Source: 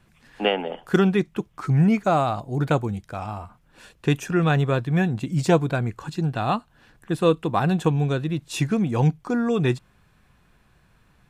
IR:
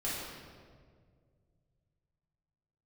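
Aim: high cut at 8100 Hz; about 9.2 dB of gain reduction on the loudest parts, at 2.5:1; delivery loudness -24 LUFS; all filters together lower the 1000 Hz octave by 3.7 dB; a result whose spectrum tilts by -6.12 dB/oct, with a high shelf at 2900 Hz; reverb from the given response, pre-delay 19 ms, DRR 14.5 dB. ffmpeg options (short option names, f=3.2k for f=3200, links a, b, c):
-filter_complex "[0:a]lowpass=8.1k,equalizer=f=1k:t=o:g=-6,highshelf=f=2.9k:g=4,acompressor=threshold=-28dB:ratio=2.5,asplit=2[a][b];[1:a]atrim=start_sample=2205,adelay=19[c];[b][c]afir=irnorm=-1:irlink=0,volume=-19.5dB[d];[a][d]amix=inputs=2:normalize=0,volume=6dB"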